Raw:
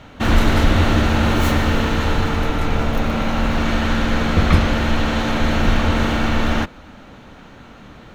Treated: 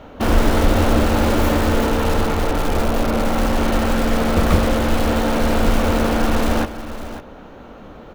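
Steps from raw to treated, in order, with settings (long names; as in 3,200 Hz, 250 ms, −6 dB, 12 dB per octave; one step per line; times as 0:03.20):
octave-band graphic EQ 125/500/2,000/4,000/8,000 Hz −7/+5/−6/−5/−9 dB
in parallel at −9 dB: wrap-around overflow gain 15 dB
on the sum: single-tap delay 552 ms −12.5 dB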